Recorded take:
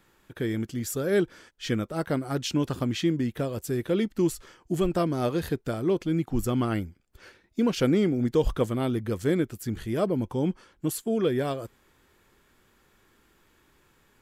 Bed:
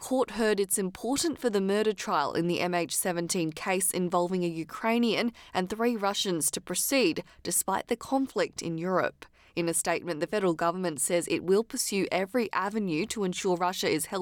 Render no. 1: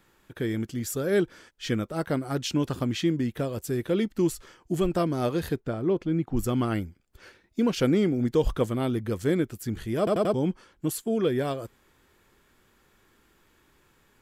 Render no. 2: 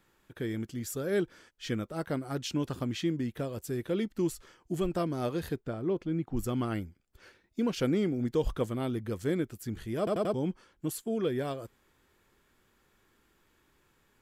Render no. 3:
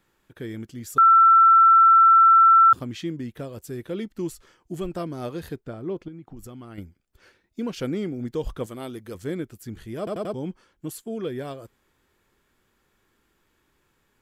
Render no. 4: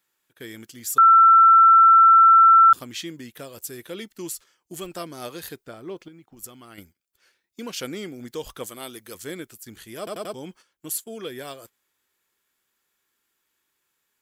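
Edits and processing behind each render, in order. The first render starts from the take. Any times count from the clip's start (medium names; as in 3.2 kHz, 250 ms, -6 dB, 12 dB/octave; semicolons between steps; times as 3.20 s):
5.60–6.37 s: low-pass 1.8 kHz 6 dB/octave; 9.98 s: stutter in place 0.09 s, 4 plays
trim -5.5 dB
0.98–2.73 s: bleep 1.34 kHz -10.5 dBFS; 6.08–6.78 s: compression 5:1, threshold -38 dBFS; 8.66–9.15 s: tone controls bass -8 dB, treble +6 dB
gate -44 dBFS, range -10 dB; tilt EQ +3.5 dB/octave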